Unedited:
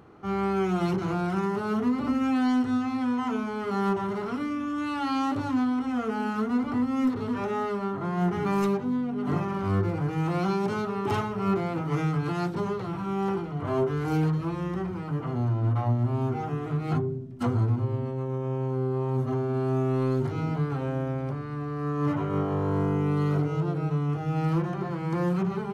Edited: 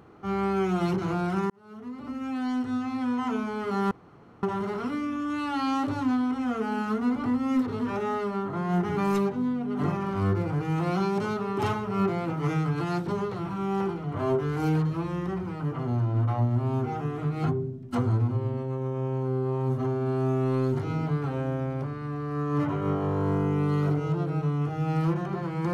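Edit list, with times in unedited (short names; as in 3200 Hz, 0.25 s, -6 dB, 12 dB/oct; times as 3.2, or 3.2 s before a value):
1.5–3.28 fade in
3.91 insert room tone 0.52 s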